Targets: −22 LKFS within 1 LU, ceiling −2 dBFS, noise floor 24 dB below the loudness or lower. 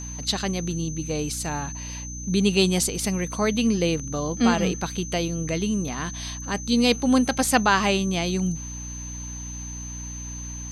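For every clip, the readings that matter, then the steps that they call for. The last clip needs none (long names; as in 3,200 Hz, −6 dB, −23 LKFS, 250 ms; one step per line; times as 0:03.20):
mains hum 60 Hz; hum harmonics up to 300 Hz; level of the hum −34 dBFS; interfering tone 6,200 Hz; level of the tone −36 dBFS; integrated loudness −24.5 LKFS; sample peak −6.0 dBFS; target loudness −22.0 LKFS
→ hum removal 60 Hz, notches 5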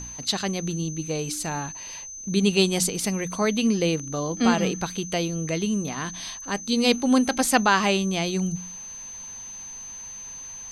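mains hum none found; interfering tone 6,200 Hz; level of the tone −36 dBFS
→ notch filter 6,200 Hz, Q 30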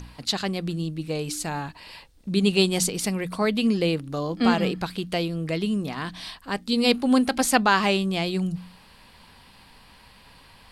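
interfering tone none found; integrated loudness −24.5 LKFS; sample peak −6.0 dBFS; target loudness −22.0 LKFS
→ level +2.5 dB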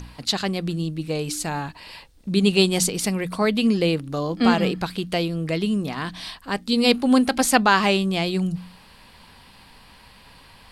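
integrated loudness −22.0 LKFS; sample peak −3.5 dBFS; background noise floor −50 dBFS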